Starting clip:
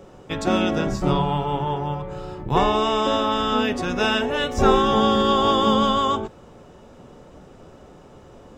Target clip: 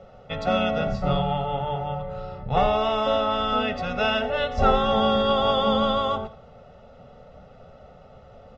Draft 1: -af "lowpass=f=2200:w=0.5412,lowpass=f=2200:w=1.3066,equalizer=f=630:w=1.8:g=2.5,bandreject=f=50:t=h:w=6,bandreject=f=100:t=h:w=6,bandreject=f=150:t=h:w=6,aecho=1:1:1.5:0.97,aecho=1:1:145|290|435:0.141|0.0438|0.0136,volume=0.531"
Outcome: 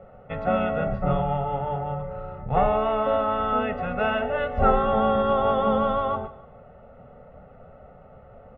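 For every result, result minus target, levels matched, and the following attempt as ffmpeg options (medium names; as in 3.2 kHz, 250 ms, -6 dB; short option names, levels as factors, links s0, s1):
echo 58 ms late; 4 kHz band -12.5 dB
-af "lowpass=f=2200:w=0.5412,lowpass=f=2200:w=1.3066,equalizer=f=630:w=1.8:g=2.5,bandreject=f=50:t=h:w=6,bandreject=f=100:t=h:w=6,bandreject=f=150:t=h:w=6,aecho=1:1:1.5:0.97,aecho=1:1:87|174|261:0.141|0.0438|0.0136,volume=0.531"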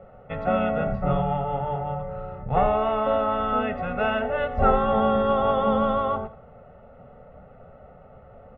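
4 kHz band -13.0 dB
-af "lowpass=f=4700:w=0.5412,lowpass=f=4700:w=1.3066,equalizer=f=630:w=1.8:g=2.5,bandreject=f=50:t=h:w=6,bandreject=f=100:t=h:w=6,bandreject=f=150:t=h:w=6,aecho=1:1:1.5:0.97,aecho=1:1:87|174|261:0.141|0.0438|0.0136,volume=0.531"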